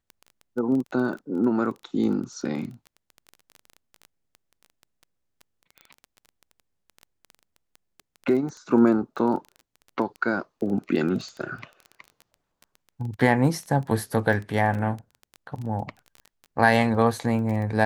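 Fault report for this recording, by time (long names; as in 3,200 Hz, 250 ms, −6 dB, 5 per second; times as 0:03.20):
surface crackle 16 per second −31 dBFS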